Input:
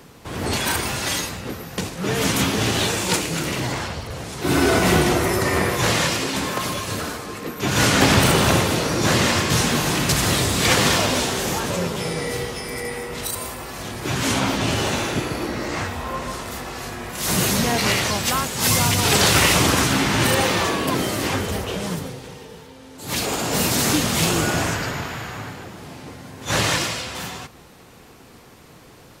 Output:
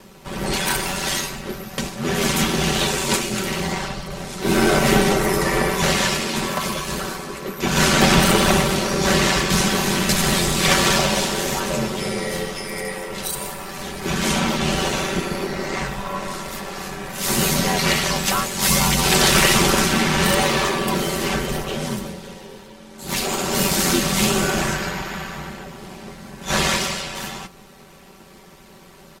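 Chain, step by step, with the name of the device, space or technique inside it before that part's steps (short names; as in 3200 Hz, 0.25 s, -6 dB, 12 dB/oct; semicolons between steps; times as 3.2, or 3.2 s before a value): ring-modulated robot voice (ring modulator 45 Hz; comb 5.2 ms, depth 71%); gain +2 dB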